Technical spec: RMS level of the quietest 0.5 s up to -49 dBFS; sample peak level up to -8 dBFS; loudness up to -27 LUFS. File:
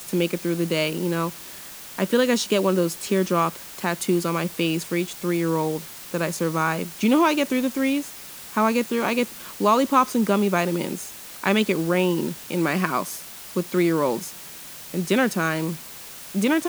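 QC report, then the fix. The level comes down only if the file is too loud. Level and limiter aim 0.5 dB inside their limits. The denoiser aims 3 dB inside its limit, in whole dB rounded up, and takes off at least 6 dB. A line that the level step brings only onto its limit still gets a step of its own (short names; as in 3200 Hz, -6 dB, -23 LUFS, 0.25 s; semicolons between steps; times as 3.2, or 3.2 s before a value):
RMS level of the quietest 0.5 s -40 dBFS: fail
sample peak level -5.0 dBFS: fail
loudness -23.5 LUFS: fail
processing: denoiser 8 dB, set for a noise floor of -40 dBFS; gain -4 dB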